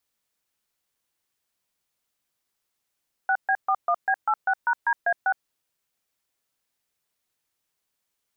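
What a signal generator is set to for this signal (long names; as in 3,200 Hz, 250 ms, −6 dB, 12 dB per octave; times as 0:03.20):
touch tones "6B41B86#DA6", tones 64 ms, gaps 133 ms, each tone −21.5 dBFS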